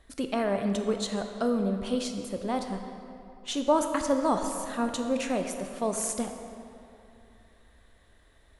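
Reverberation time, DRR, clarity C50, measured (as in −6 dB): 2.8 s, 5.5 dB, 6.0 dB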